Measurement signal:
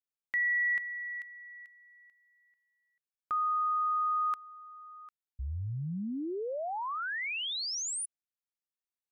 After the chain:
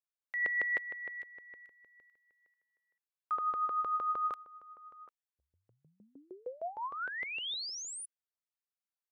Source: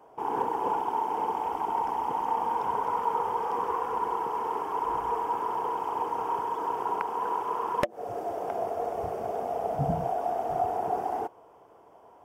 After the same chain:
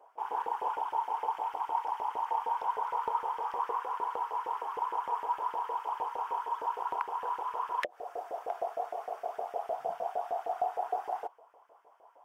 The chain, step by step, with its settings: LFO high-pass saw up 6.5 Hz 470–1900 Hz; dynamic EQ 3600 Hz, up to +5 dB, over -50 dBFS, Q 1.7; gain -8 dB

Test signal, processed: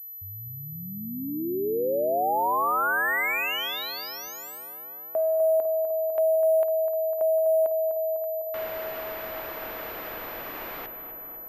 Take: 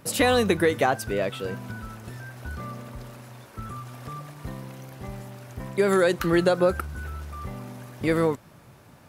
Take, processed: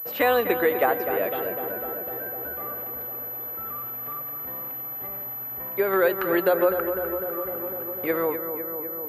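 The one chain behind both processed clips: in parallel at -3 dB: level quantiser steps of 10 dB; on the sum: three-band isolator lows -18 dB, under 330 Hz, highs -14 dB, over 2700 Hz; darkening echo 0.251 s, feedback 80%, low-pass 2000 Hz, level -8 dB; pulse-width modulation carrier 12000 Hz; gain -2.5 dB

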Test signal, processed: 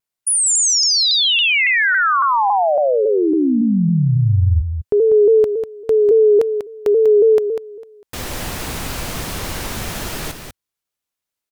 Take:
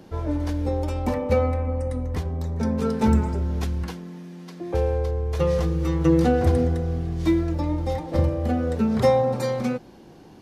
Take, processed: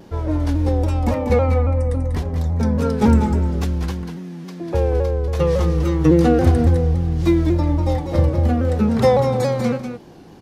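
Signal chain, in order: bell 91 Hz +2 dB 0.92 oct; on a send: echo 0.195 s -7.5 dB; on the sum: shaped vibrato saw down 3.6 Hz, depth 100 cents; gain +3.5 dB

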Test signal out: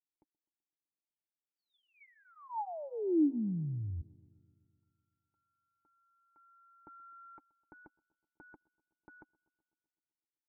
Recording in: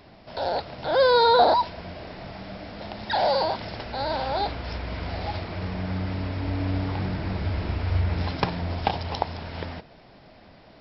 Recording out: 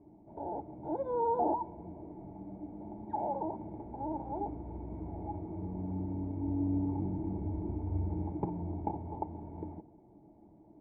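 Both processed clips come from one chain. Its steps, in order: vocal tract filter u; notch comb 260 Hz; darkening echo 0.127 s, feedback 68%, low-pass 2500 Hz, level -24 dB; gain +4.5 dB

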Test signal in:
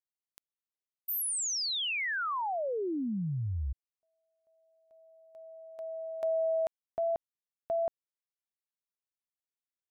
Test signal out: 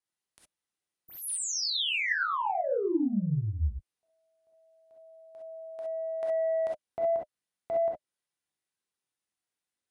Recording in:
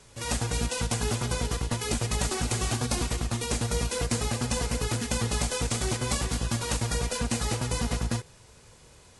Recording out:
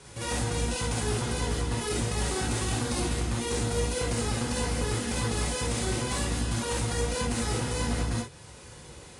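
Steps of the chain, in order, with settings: HPF 45 Hz; bell 9600 Hz +13 dB 0.25 oct; notch 610 Hz, Q 12; in parallel at +1.5 dB: compressor 12:1, threshold -39 dBFS; on the sum: soft clip -21 dBFS; air absorption 62 m; non-linear reverb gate 80 ms rising, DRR -2 dB; gain -3 dB

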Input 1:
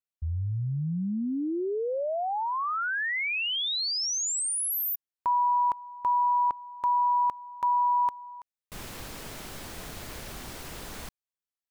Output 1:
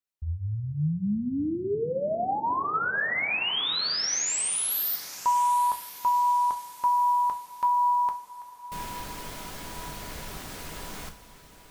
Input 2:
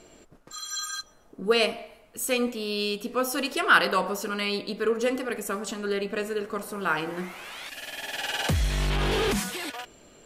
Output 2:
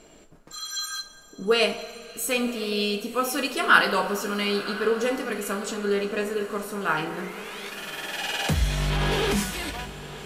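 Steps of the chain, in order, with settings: diffused feedback echo 1.057 s, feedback 41%, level -14.5 dB; two-slope reverb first 0.28 s, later 4.3 s, from -21 dB, DRR 4 dB

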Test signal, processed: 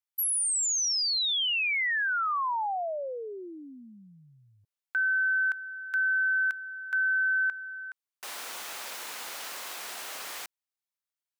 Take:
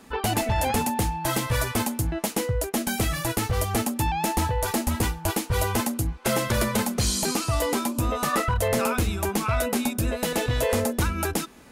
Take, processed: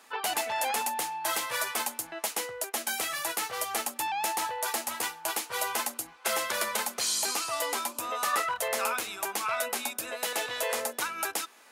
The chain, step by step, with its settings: HPF 750 Hz 12 dB/oct; gain -1.5 dB

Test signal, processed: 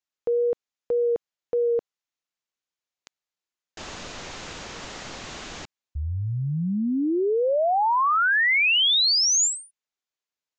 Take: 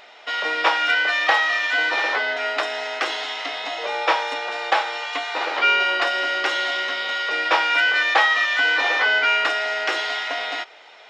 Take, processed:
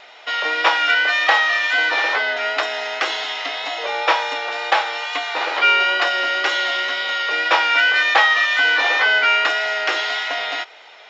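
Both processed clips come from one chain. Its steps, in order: elliptic low-pass 7100 Hz, stop band 40 dB; low shelf 210 Hz -8 dB; wow and flutter 19 cents; gain +3.5 dB

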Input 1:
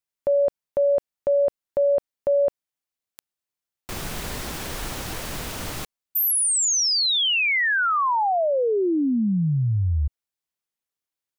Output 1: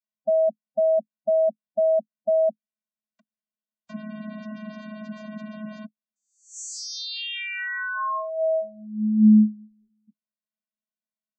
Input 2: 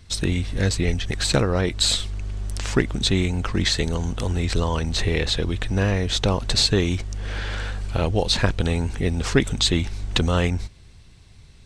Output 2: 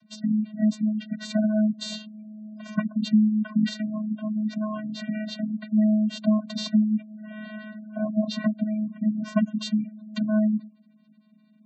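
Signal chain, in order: wrapped overs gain 7.5 dB; vocoder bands 16, square 214 Hz; spectral gate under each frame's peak -25 dB strong

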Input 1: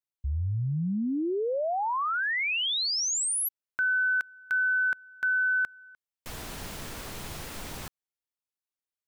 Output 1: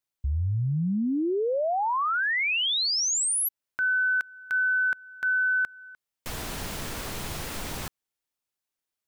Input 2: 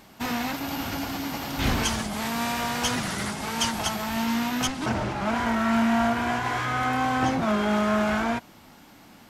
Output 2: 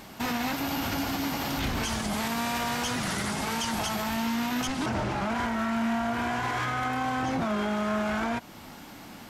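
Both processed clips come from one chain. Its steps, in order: in parallel at -1 dB: compressor, threshold -36 dBFS; on the sum: limiter -21 dBFS

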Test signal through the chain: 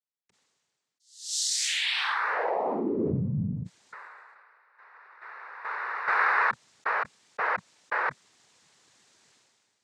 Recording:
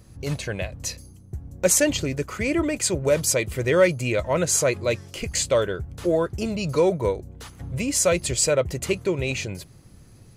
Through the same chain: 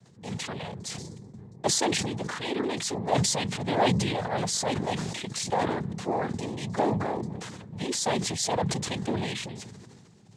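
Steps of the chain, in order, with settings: noise vocoder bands 6; sustainer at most 29 dB/s; gain -7.5 dB

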